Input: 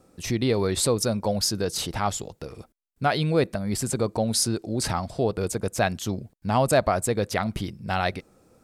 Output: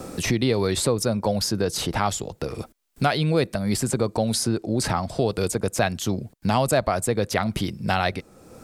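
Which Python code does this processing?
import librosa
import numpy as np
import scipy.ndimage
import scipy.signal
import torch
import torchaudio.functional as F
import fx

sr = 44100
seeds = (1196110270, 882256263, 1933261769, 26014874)

y = fx.band_squash(x, sr, depth_pct=70)
y = y * librosa.db_to_amplitude(1.5)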